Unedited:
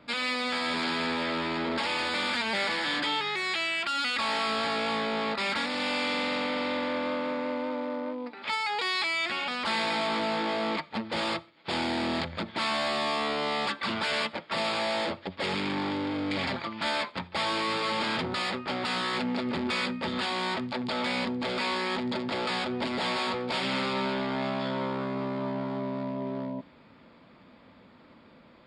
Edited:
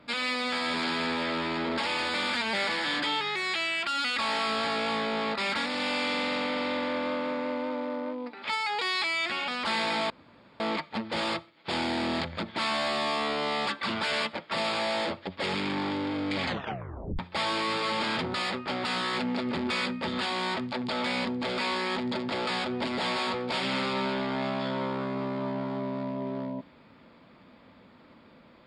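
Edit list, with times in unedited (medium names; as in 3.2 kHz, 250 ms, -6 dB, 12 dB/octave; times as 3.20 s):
10.10–10.60 s: room tone
16.45 s: tape stop 0.74 s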